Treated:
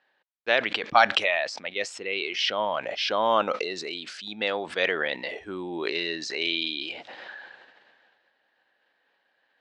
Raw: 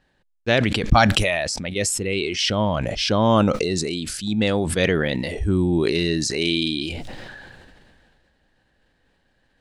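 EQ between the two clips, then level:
band-pass filter 650–4,200 Hz
high-frequency loss of the air 70 metres
0.0 dB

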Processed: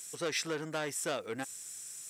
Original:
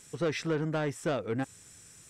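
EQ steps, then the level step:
RIAA equalisation recording
−2.5 dB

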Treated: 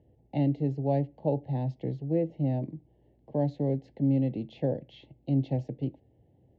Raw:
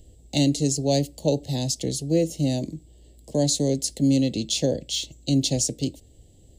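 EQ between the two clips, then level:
loudspeaker in its box 110–2,000 Hz, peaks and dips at 130 Hz +7 dB, 840 Hz +8 dB, 1,300 Hz +4 dB
−6.5 dB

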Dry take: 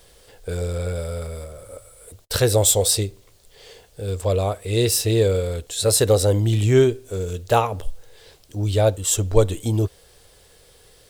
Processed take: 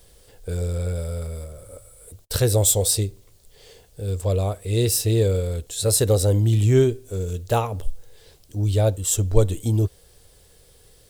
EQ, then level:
low-shelf EQ 380 Hz +9 dB
high-shelf EQ 5,400 Hz +8 dB
−7.0 dB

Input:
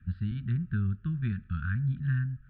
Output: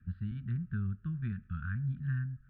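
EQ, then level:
low-pass filter 1,000 Hz 6 dB per octave
low-shelf EQ 210 Hz −6.5 dB
dynamic equaliser 340 Hz, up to −6 dB, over −54 dBFS, Q 1.8
0.0 dB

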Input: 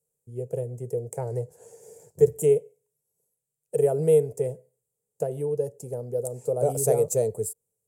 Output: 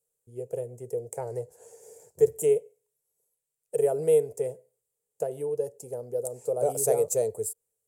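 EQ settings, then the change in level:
parametric band 150 Hz −11 dB 1.7 octaves
0.0 dB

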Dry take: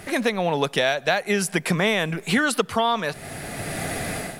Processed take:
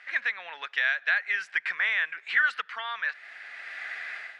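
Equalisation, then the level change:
dynamic equaliser 1,600 Hz, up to +5 dB, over −35 dBFS, Q 1.9
four-pole ladder band-pass 2,100 Hz, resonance 45%
high-frequency loss of the air 82 metres
+5.0 dB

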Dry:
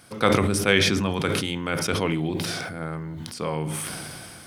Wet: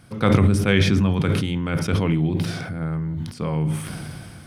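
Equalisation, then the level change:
bass and treble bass +12 dB, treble −5 dB
−2.0 dB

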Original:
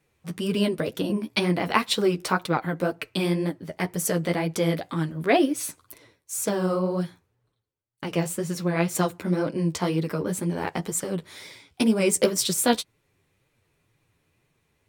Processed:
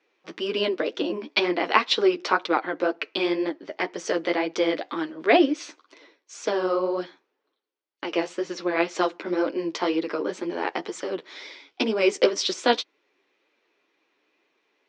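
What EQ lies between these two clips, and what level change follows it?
elliptic band-pass filter 300–5,900 Hz, stop band 40 dB
high-frequency loss of the air 71 metres
parametric band 3,100 Hz +3 dB 1 octave
+3.0 dB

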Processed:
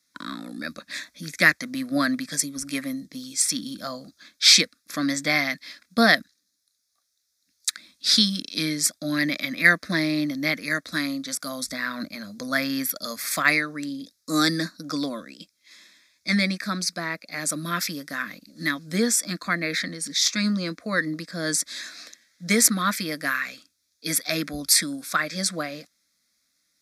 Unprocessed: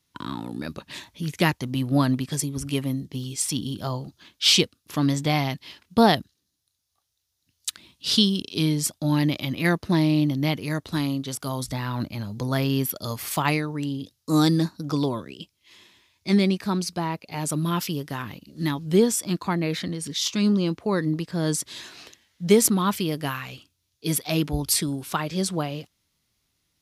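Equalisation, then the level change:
meter weighting curve D
dynamic equaliser 1,900 Hz, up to +7 dB, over −35 dBFS, Q 1.3
phaser with its sweep stopped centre 590 Hz, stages 8
0.0 dB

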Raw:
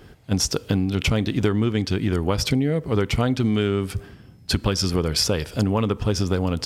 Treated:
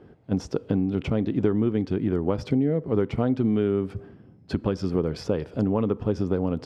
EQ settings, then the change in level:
resonant band-pass 330 Hz, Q 0.64
0.0 dB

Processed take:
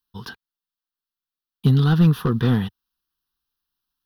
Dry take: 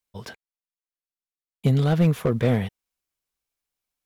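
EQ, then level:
parametric band 90 Hz −5.5 dB 0.77 octaves
phaser with its sweep stopped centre 2,200 Hz, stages 6
+6.0 dB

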